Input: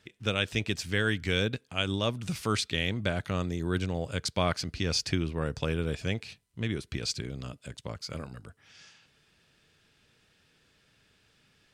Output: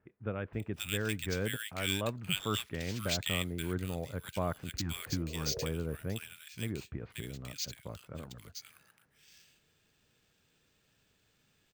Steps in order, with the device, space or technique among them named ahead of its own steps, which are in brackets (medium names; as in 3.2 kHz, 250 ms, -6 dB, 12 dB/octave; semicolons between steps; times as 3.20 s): 4.75–5.64 s: spectral replace 350–730 Hz both; early companding sampler (sample-rate reducer 11 kHz, jitter 0%; companded quantiser 8-bit); 1.22–2.90 s: peaking EQ 2.8 kHz +4.5 dB 2.8 oct; bands offset in time lows, highs 530 ms, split 1.7 kHz; trim -5.5 dB